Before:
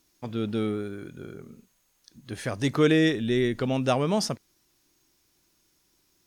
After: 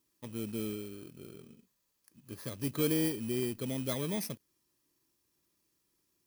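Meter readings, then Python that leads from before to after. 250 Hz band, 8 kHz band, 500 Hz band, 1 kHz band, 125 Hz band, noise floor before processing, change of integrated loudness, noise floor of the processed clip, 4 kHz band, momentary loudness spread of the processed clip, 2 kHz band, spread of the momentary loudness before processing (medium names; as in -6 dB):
-9.0 dB, -2.5 dB, -11.0 dB, -17.0 dB, -9.5 dB, -69 dBFS, -9.0 dB, -79 dBFS, -9.5 dB, 19 LU, -14.5 dB, 20 LU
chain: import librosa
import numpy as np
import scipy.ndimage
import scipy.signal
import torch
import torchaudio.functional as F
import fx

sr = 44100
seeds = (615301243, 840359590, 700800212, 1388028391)

y = fx.bit_reversed(x, sr, seeds[0], block=16)
y = fx.notch_comb(y, sr, f0_hz=740.0)
y = fx.dynamic_eq(y, sr, hz=890.0, q=0.81, threshold_db=-41.0, ratio=4.0, max_db=-5)
y = fx.quant_float(y, sr, bits=2)
y = F.gain(torch.from_numpy(y), -8.0).numpy()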